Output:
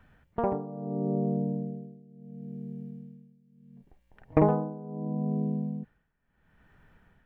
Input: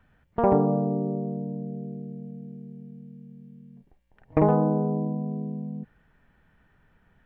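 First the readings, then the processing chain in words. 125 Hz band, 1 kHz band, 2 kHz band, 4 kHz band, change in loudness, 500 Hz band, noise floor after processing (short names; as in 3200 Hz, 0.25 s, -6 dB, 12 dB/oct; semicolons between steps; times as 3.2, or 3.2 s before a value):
-3.5 dB, -5.5 dB, -2.5 dB, n/a, -4.5 dB, -5.0 dB, -71 dBFS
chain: tremolo 0.73 Hz, depth 90%; gain +3 dB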